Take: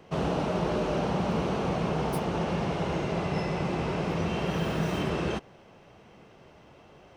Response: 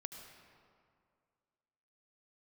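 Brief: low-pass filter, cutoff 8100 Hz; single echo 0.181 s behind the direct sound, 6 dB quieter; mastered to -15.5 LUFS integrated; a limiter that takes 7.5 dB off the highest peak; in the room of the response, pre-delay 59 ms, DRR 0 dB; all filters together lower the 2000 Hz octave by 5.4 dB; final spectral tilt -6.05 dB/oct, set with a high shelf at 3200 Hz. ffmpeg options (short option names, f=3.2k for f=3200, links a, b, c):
-filter_complex "[0:a]lowpass=8.1k,equalizer=f=2k:t=o:g=-4.5,highshelf=f=3.2k:g=-7.5,alimiter=limit=-24dB:level=0:latency=1,aecho=1:1:181:0.501,asplit=2[a][b];[1:a]atrim=start_sample=2205,adelay=59[c];[b][c]afir=irnorm=-1:irlink=0,volume=3dB[d];[a][d]amix=inputs=2:normalize=0,volume=14dB"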